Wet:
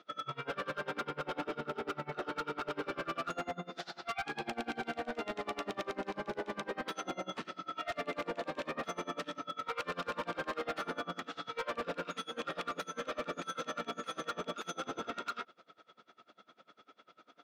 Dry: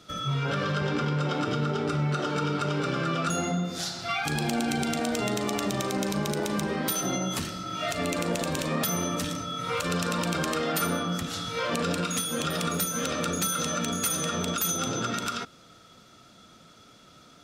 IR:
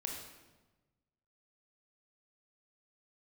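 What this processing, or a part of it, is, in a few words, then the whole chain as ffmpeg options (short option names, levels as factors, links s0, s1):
helicopter radio: -af "highpass=380,lowpass=2500,aeval=exprs='val(0)*pow(10,-26*(0.5-0.5*cos(2*PI*10*n/s))/20)':c=same,asoftclip=type=hard:threshold=0.0237,volume=1.12"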